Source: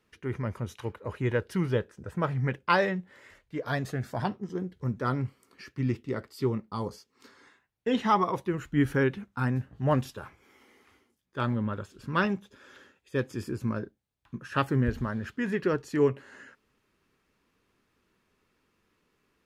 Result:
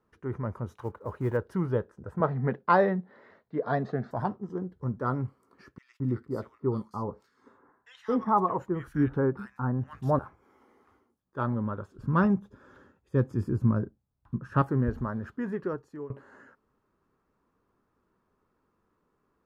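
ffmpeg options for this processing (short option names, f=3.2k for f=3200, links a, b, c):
-filter_complex "[0:a]asettb=1/sr,asplit=3[a][b][c];[a]atrim=end=0.684[d];[b]atrim=start=0.68:end=1.37,asetpts=PTS-STARTPTS,afade=t=in:d=0.004:c=qsin,afade=t=out:st=0.686:d=0.004:c=qsin,acrusher=bits=6:mode=log:mix=0:aa=0.000001[e];[c]atrim=start=1.366[f];[d][e]acrossfade=d=0.004:c1=hsin:c2=qsin[g];[g][f]acrossfade=d=0.004:c1=qsin:c2=hsin,asettb=1/sr,asplit=3[h][i][j];[h]atrim=end=2.204[k];[i]atrim=start=2.2:end=4.11,asetpts=PTS-STARTPTS,afade=t=in:d=0.004:c=qsin,afade=t=out:st=1.906:d=0.004:c=qsin,highpass=140,equalizer=f=150:t=q:w=4:g=4,equalizer=f=220:t=q:w=4:g=9,equalizer=f=430:t=q:w=4:g=6,equalizer=f=700:t=q:w=4:g=6,equalizer=f=1.9k:t=q:w=4:g=5,equalizer=f=4k:t=q:w=4:g=8,lowpass=f=5.1k:w=0.5412,lowpass=f=5.1k:w=1.3066[l];[j]atrim=start=4.106[m];[k][l]acrossfade=d=0.004:c1=hsin:c2=qsin[n];[n][m]acrossfade=d=0.004:c1=qsin:c2=hsin,asettb=1/sr,asplit=3[o][p][q];[o]atrim=end=5.784[r];[p]atrim=start=5.78:end=10.19,asetpts=PTS-STARTPTS,afade=t=in:d=0.004:c=qsin,afade=t=out:st=4.406:d=0.004:c=qsin,acrossover=split=1700[s][t];[s]adelay=220[u];[u][t]amix=inputs=2:normalize=0,atrim=end_sample=194481[v];[q]atrim=start=10.186[w];[r][v]acrossfade=d=0.004:c1=hsin:c2=qsin[x];[x][w]acrossfade=d=0.004:c1=qsin:c2=hsin,asettb=1/sr,asplit=3[y][z][aa];[y]atrim=end=11.984[ab];[z]atrim=start=11.98:end=14.62,asetpts=PTS-STARTPTS,afade=t=in:d=0.004:c=qsin,afade=t=out:st=2.636:d=0.004:c=qsin,bass=f=250:g=10,treble=f=4k:g=0[ac];[aa]atrim=start=14.616[ad];[ab][ac]acrossfade=d=0.004:c1=hsin:c2=qsin[ae];[ae][ad]acrossfade=d=0.004:c1=qsin:c2=hsin,asplit=2[af][ag];[af]atrim=end=16.1,asetpts=PTS-STARTPTS,afade=t=out:st=15.34:d=0.76:silence=0.0794328[ah];[ag]atrim=start=16.1,asetpts=PTS-STARTPTS,afade=t=in:d=0.004:c=hsin:silence=0.0794328[ai];[ah][ai]concat=n=2:v=0:a=1,highshelf=f=1.7k:t=q:w=1.5:g=-12,volume=-1dB"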